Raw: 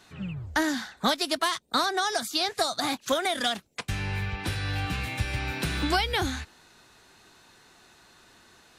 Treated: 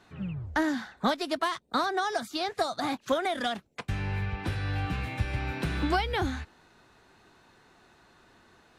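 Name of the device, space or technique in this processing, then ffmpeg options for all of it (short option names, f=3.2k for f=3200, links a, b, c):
through cloth: -af "highshelf=f=3k:g=-13"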